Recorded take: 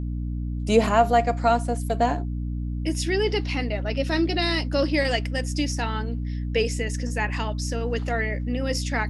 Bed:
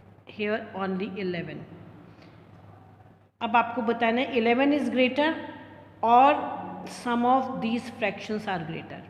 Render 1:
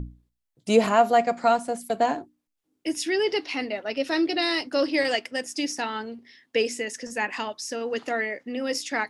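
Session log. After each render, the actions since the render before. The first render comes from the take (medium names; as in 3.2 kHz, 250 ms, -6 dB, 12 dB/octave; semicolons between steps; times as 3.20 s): hum notches 60/120/180/240/300 Hz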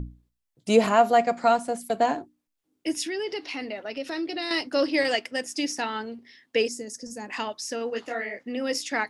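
3.06–4.51 s: compression 2:1, threshold -32 dBFS; 6.68–7.30 s: FFT filter 210 Hz 0 dB, 1.1 kHz -13 dB, 2.8 kHz -22 dB, 4.8 kHz -1 dB; 7.90–8.39 s: detune thickener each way 57 cents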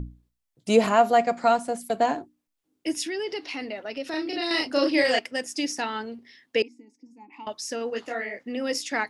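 4.10–5.19 s: doubling 35 ms -2 dB; 6.62–7.47 s: vowel filter u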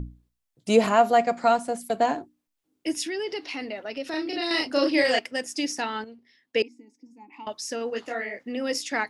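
6.04–6.60 s: upward expansion, over -38 dBFS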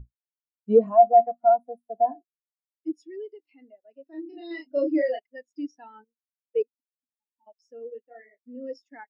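waveshaping leveller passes 2; spectral contrast expander 2.5:1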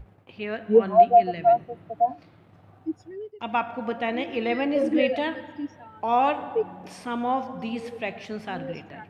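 add bed -3.5 dB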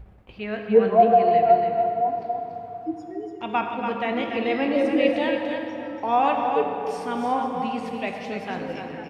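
delay 287 ms -6.5 dB; plate-style reverb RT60 3.5 s, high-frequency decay 0.6×, DRR 4 dB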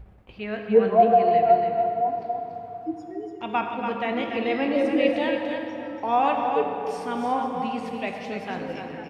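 trim -1 dB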